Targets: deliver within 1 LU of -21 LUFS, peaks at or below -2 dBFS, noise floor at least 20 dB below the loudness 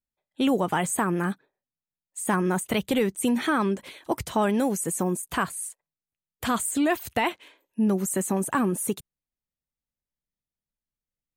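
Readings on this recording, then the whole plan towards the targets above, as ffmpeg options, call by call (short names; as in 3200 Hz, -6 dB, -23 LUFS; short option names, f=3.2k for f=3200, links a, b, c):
loudness -26.0 LUFS; peak -14.0 dBFS; loudness target -21.0 LUFS
-> -af "volume=5dB"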